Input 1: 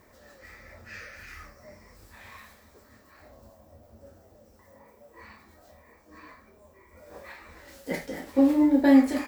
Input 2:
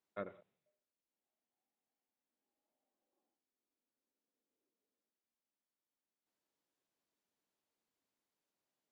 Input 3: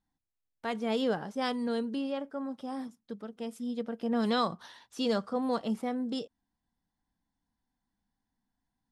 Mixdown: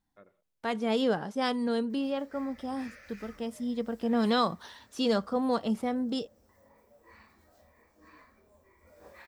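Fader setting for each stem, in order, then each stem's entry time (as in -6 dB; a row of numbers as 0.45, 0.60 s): -7.5, -13.5, +2.5 dB; 1.90, 0.00, 0.00 s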